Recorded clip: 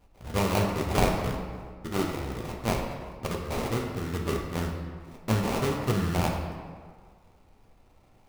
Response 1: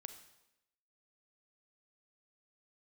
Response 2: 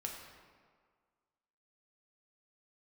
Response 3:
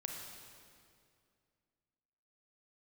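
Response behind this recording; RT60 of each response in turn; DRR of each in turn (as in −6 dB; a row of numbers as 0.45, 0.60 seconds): 2; 0.90, 1.8, 2.3 seconds; 8.5, 0.0, 1.0 decibels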